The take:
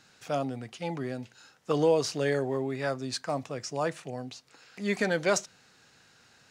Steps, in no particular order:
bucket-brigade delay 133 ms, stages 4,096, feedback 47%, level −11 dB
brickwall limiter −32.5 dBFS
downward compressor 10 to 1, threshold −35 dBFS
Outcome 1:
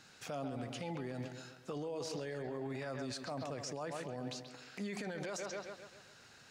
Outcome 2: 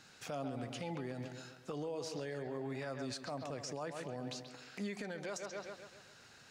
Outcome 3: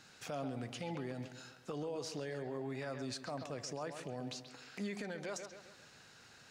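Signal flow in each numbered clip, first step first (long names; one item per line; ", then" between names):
bucket-brigade delay, then brickwall limiter, then downward compressor
bucket-brigade delay, then downward compressor, then brickwall limiter
downward compressor, then bucket-brigade delay, then brickwall limiter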